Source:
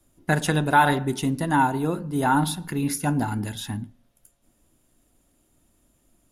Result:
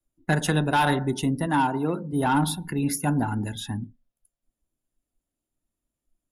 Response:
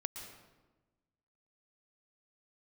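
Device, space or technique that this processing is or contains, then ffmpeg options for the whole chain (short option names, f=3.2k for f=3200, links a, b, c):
one-band saturation: -filter_complex "[0:a]asettb=1/sr,asplit=3[a][b][c];[a]atrim=end=1.464[d];[b]atrim=start=1.46:end=2.13,asetpts=PTS-STARTPTS,afade=t=in:d=0.004:c=qsin,afade=t=out:st=0.666:d=0.004:c=qsin,highpass=140[e];[c]atrim=start=2.126[f];[d][e]acrossfade=d=0.004:c1=hsin:c2=qsin[g];[g][f]acrossfade=d=0.004:c1=qsin:c2=hsin,afftdn=nr=21:nf=-42,acrossover=split=350|2300[h][i][j];[i]asoftclip=type=tanh:threshold=-18dB[k];[h][k][j]amix=inputs=3:normalize=0"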